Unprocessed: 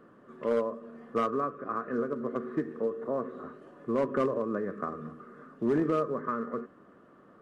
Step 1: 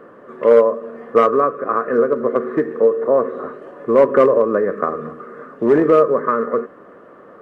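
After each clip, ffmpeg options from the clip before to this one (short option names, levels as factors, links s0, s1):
-af "equalizer=f=500:t=o:w=1:g=11,equalizer=f=1000:t=o:w=1:g=5,equalizer=f=2000:t=o:w=1:g=7,volume=2.11"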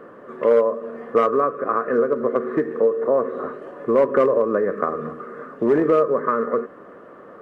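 -af "acompressor=threshold=0.0891:ratio=1.5"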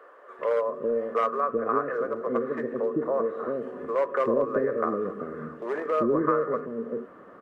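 -filter_complex "[0:a]acrossover=split=470[s0][s1];[s0]adelay=390[s2];[s2][s1]amix=inputs=2:normalize=0,volume=0.596"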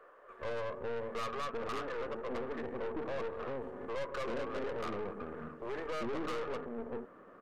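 -af "aeval=exprs='(tanh(39.8*val(0)+0.7)-tanh(0.7))/39.8':c=same,volume=0.668"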